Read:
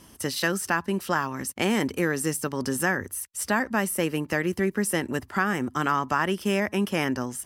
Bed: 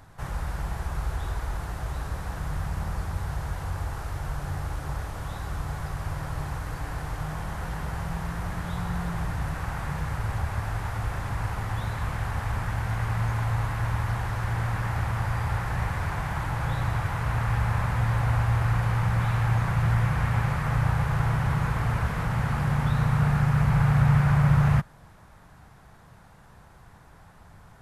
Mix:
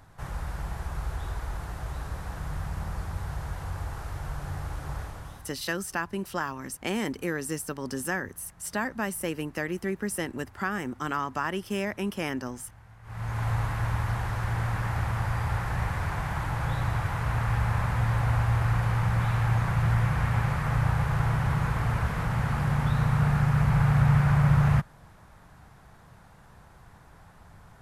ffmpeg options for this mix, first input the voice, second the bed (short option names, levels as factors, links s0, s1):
-filter_complex "[0:a]adelay=5250,volume=0.531[s0];[1:a]volume=9.44,afade=t=out:st=5.01:d=0.53:silence=0.0944061,afade=t=in:st=13.03:d=0.45:silence=0.0749894[s1];[s0][s1]amix=inputs=2:normalize=0"